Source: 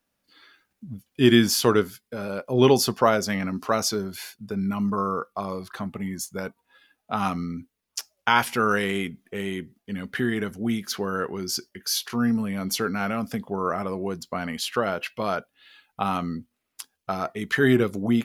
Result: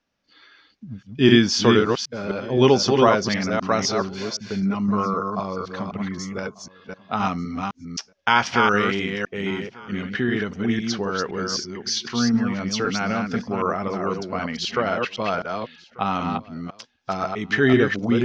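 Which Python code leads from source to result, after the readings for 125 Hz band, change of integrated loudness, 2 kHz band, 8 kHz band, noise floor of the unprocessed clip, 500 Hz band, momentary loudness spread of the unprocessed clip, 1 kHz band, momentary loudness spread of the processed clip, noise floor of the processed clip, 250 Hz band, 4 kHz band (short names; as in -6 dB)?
+3.0 dB, +3.0 dB, +3.5 dB, -0.5 dB, -79 dBFS, +3.0 dB, 15 LU, +3.5 dB, 14 LU, -59 dBFS, +3.0 dB, +3.5 dB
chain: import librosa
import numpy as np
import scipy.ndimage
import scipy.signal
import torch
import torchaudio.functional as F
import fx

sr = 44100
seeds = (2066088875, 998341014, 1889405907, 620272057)

y = fx.reverse_delay(x, sr, ms=257, wet_db=-4)
y = scipy.signal.sosfilt(scipy.signal.ellip(4, 1.0, 70, 6000.0, 'lowpass', fs=sr, output='sos'), y)
y = y + 10.0 ** (-23.5 / 20.0) * np.pad(y, (int(1190 * sr / 1000.0), 0))[:len(y)]
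y = F.gain(torch.from_numpy(y), 2.5).numpy()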